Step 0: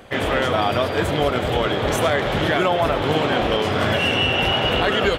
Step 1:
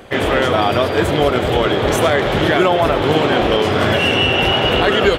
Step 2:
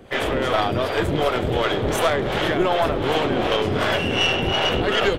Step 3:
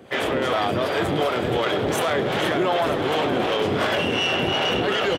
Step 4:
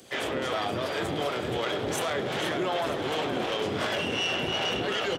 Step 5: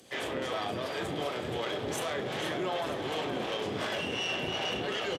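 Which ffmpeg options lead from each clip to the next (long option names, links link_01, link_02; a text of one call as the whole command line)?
ffmpeg -i in.wav -af "equalizer=frequency=370:width_type=o:width=0.51:gain=4,volume=4dB" out.wav
ffmpeg -i in.wav -filter_complex "[0:a]acrossover=split=460[link_01][link_02];[link_01]aeval=exprs='val(0)*(1-0.7/2+0.7/2*cos(2*PI*2.7*n/s))':channel_layout=same[link_03];[link_02]aeval=exprs='val(0)*(1-0.7/2-0.7/2*cos(2*PI*2.7*n/s))':channel_layout=same[link_04];[link_03][link_04]amix=inputs=2:normalize=0,aeval=exprs='(tanh(2.51*val(0)+0.55)-tanh(0.55))/2.51':channel_layout=same" out.wav
ffmpeg -i in.wav -filter_complex "[0:a]highpass=120,asplit=2[link_01][link_02];[link_02]asplit=4[link_03][link_04][link_05][link_06];[link_03]adelay=471,afreqshift=40,volume=-11dB[link_07];[link_04]adelay=942,afreqshift=80,volume=-18.5dB[link_08];[link_05]adelay=1413,afreqshift=120,volume=-26.1dB[link_09];[link_06]adelay=1884,afreqshift=160,volume=-33.6dB[link_10];[link_07][link_08][link_09][link_10]amix=inputs=4:normalize=0[link_11];[link_01][link_11]amix=inputs=2:normalize=0,alimiter=limit=-13dB:level=0:latency=1:release=11" out.wav
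ffmpeg -i in.wav -filter_complex "[0:a]acrossover=split=160|3900[link_01][link_02][link_03];[link_03]acompressor=mode=upward:threshold=-43dB:ratio=2.5[link_04];[link_01][link_02][link_04]amix=inputs=3:normalize=0,equalizer=frequency=6500:width_type=o:width=1.5:gain=5.5,bandreject=frequency=48.94:width_type=h:width=4,bandreject=frequency=97.88:width_type=h:width=4,bandreject=frequency=146.82:width_type=h:width=4,bandreject=frequency=195.76:width_type=h:width=4,bandreject=frequency=244.7:width_type=h:width=4,bandreject=frequency=293.64:width_type=h:width=4,bandreject=frequency=342.58:width_type=h:width=4,bandreject=frequency=391.52:width_type=h:width=4,bandreject=frequency=440.46:width_type=h:width=4,bandreject=frequency=489.4:width_type=h:width=4,bandreject=frequency=538.34:width_type=h:width=4,bandreject=frequency=587.28:width_type=h:width=4,bandreject=frequency=636.22:width_type=h:width=4,bandreject=frequency=685.16:width_type=h:width=4,bandreject=frequency=734.1:width_type=h:width=4,bandreject=frequency=783.04:width_type=h:width=4,bandreject=frequency=831.98:width_type=h:width=4,bandreject=frequency=880.92:width_type=h:width=4,bandreject=frequency=929.86:width_type=h:width=4,bandreject=frequency=978.8:width_type=h:width=4,bandreject=frequency=1027.74:width_type=h:width=4,bandreject=frequency=1076.68:width_type=h:width=4,bandreject=frequency=1125.62:width_type=h:width=4,bandreject=frequency=1174.56:width_type=h:width=4,bandreject=frequency=1223.5:width_type=h:width=4,bandreject=frequency=1272.44:width_type=h:width=4,bandreject=frequency=1321.38:width_type=h:width=4,bandreject=frequency=1370.32:width_type=h:width=4,bandreject=frequency=1419.26:width_type=h:width=4,bandreject=frequency=1468.2:width_type=h:width=4,bandreject=frequency=1517.14:width_type=h:width=4,volume=-7dB" out.wav
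ffmpeg -i in.wav -filter_complex "[0:a]bandreject=frequency=1400:width=18,asplit=2[link_01][link_02];[link_02]adelay=38,volume=-11.5dB[link_03];[link_01][link_03]amix=inputs=2:normalize=0,aresample=32000,aresample=44100,volume=-4.5dB" out.wav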